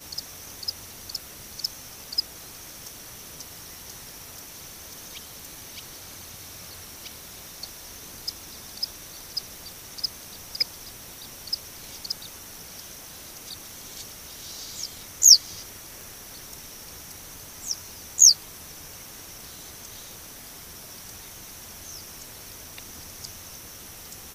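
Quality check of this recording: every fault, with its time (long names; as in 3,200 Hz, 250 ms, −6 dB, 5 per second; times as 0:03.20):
0:16.01: click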